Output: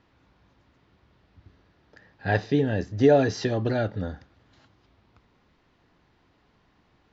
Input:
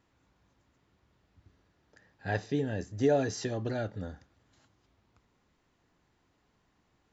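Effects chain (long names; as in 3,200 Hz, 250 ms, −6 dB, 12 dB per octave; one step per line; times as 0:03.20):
low-pass filter 5,100 Hz 24 dB per octave
level +8 dB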